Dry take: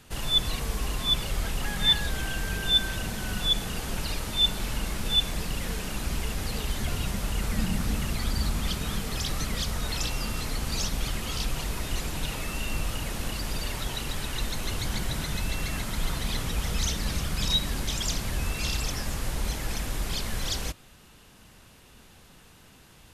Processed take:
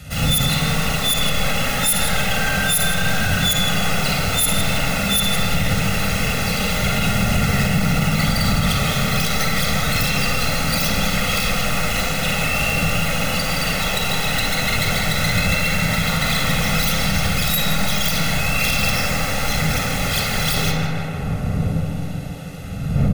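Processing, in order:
stylus tracing distortion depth 0.23 ms
wind on the microphone 110 Hz −33 dBFS
high-shelf EQ 3,700 Hz +7.5 dB
comb filter 1.5 ms, depth 84%
tape delay 159 ms, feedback 87%, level −3 dB, low-pass 2,400 Hz
convolution reverb RT60 0.50 s, pre-delay 45 ms, DRR 1 dB
brickwall limiter −11.5 dBFS, peak gain reduction 10.5 dB
level +3.5 dB

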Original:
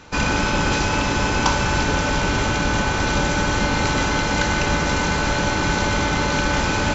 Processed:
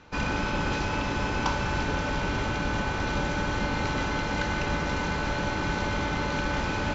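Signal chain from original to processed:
high-frequency loss of the air 110 metres
level −7.5 dB

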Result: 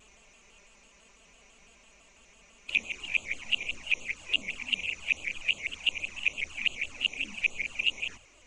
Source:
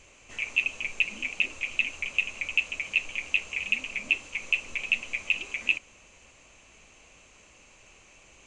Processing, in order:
played backwards from end to start
flanger swept by the level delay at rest 5.4 ms, full sweep at −25.5 dBFS
pitch modulation by a square or saw wave square 6 Hz, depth 100 cents

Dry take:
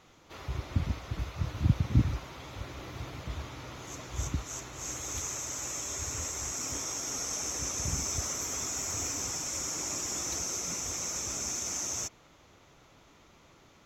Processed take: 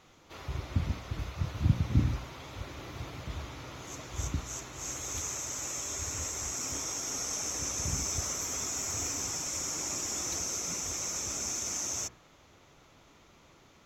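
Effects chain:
hum removal 60.99 Hz, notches 34

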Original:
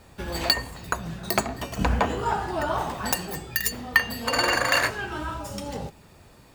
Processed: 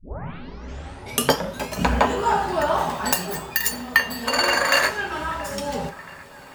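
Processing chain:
turntable start at the beginning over 1.86 s
low-shelf EQ 150 Hz −9 dB
speech leveller within 3 dB 2 s
delay with a band-pass on its return 677 ms, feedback 63%, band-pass 1,300 Hz, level −18 dB
on a send at −6 dB: convolution reverb, pre-delay 3 ms
on the sum: level +3 dB

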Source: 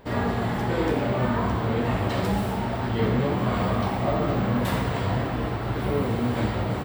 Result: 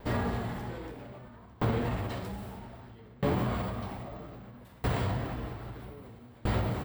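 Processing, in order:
low-shelf EQ 66 Hz +9 dB
brickwall limiter −18 dBFS, peak gain reduction 7.5 dB
high-shelf EQ 11,000 Hz +7.5 dB
tremolo with a ramp in dB decaying 0.62 Hz, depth 29 dB

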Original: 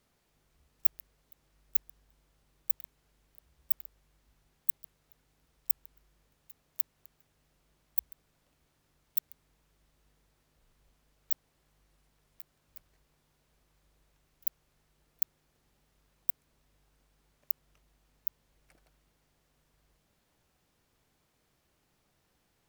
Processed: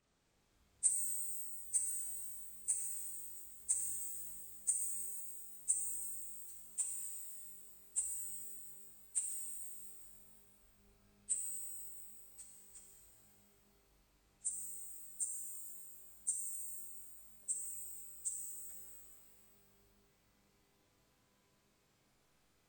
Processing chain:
hearing-aid frequency compression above 1,700 Hz 1.5 to 1
reverb with rising layers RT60 2.3 s, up +12 semitones, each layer −2 dB, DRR −0.5 dB
level −6.5 dB

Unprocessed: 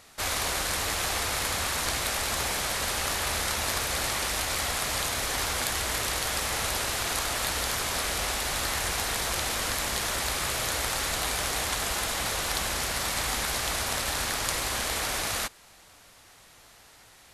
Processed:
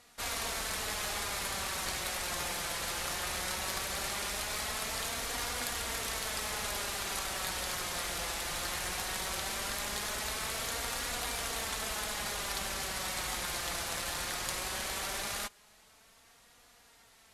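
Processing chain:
harmonic generator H 4 −24 dB, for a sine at −9 dBFS
flanger 0.18 Hz, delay 4.1 ms, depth 1.8 ms, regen +39%
level −3 dB

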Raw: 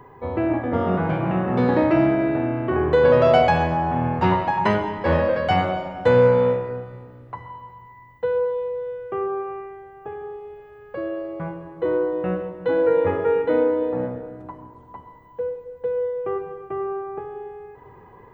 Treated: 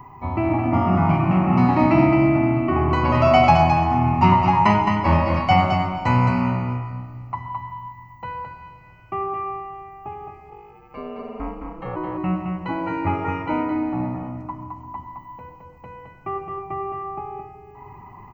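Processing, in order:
phaser with its sweep stopped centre 2,400 Hz, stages 8
0:10.50–0:11.95: ring modulation 45 Hz → 200 Hz
single-tap delay 216 ms −5 dB
level +6 dB

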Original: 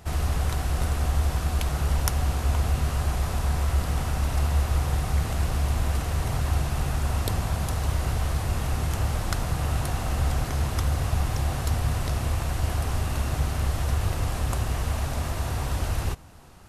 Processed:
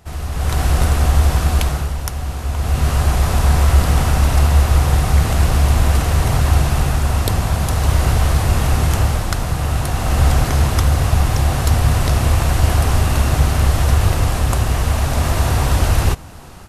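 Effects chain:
automatic gain control gain up to 16.5 dB
level −1 dB

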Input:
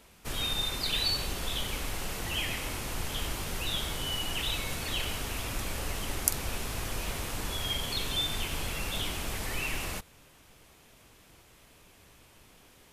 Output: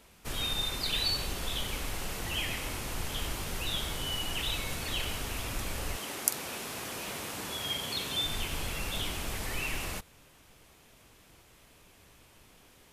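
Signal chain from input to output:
0:05.96–0:08.23: high-pass filter 250 Hz → 110 Hz 12 dB per octave
level −1 dB

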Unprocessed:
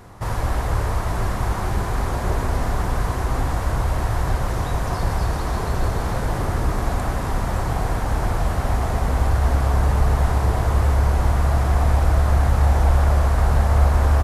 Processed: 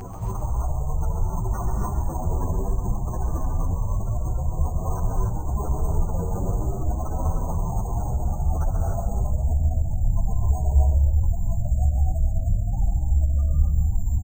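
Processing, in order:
Butterworth low-pass 9,600 Hz 48 dB per octave, from 0:05.20 2,000 Hz
gate on every frequency bin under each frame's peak −15 dB strong
reverb reduction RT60 0.87 s
upward compression, threshold −22 dBFS
bit-depth reduction 12 bits, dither none
echo with shifted repeats 134 ms, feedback 48%, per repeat −63 Hz, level −7.5 dB
convolution reverb, pre-delay 3 ms, DRR −0.5 dB
bad sample-rate conversion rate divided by 6×, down filtered, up hold
barber-pole flanger 8.6 ms +0.8 Hz

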